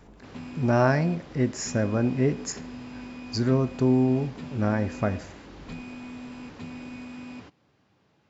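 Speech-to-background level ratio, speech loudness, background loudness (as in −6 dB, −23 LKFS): 15.5 dB, −25.5 LKFS, −41.0 LKFS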